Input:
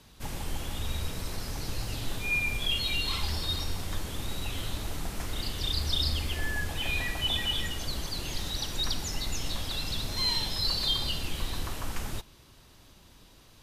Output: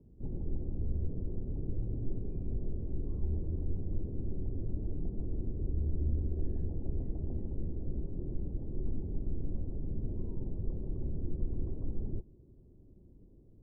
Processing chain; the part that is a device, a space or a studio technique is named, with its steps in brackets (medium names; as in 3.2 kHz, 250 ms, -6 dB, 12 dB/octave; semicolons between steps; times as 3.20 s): under water (low-pass 420 Hz 24 dB/octave; peaking EQ 370 Hz +4 dB 0.21 oct)